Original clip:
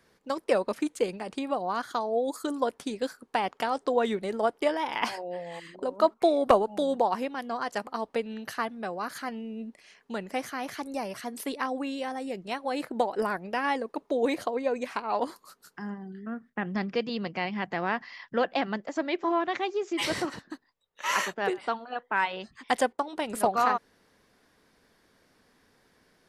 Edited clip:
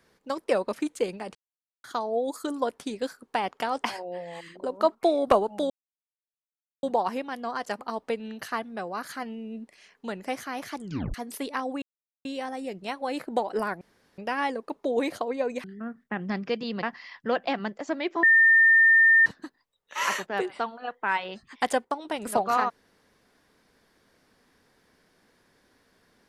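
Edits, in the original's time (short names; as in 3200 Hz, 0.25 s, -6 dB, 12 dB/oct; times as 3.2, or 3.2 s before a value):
1.35–1.84 mute
3.84–5.03 cut
6.89 insert silence 1.13 s
10.82 tape stop 0.38 s
11.88 insert silence 0.43 s
13.44 insert room tone 0.37 s
14.9–16.1 cut
17.29–17.91 cut
19.31–20.34 bleep 1810 Hz -14 dBFS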